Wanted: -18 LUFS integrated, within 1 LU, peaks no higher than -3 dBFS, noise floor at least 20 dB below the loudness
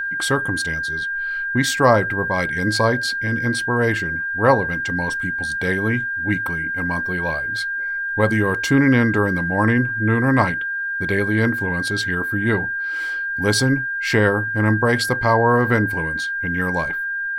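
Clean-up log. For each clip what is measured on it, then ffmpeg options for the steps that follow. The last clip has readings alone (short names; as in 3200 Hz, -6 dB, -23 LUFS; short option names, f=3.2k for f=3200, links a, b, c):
steady tone 1600 Hz; tone level -22 dBFS; loudness -19.5 LUFS; peak -1.5 dBFS; loudness target -18.0 LUFS
-> -af "bandreject=f=1.6k:w=30"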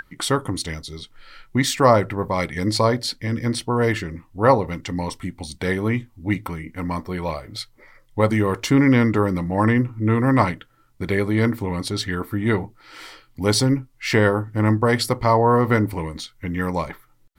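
steady tone none; loudness -21.0 LUFS; peak -2.5 dBFS; loudness target -18.0 LUFS
-> -af "volume=3dB,alimiter=limit=-3dB:level=0:latency=1"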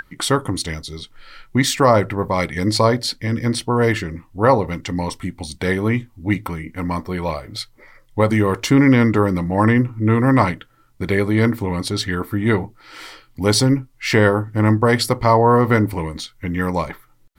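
loudness -18.5 LUFS; peak -3.0 dBFS; noise floor -53 dBFS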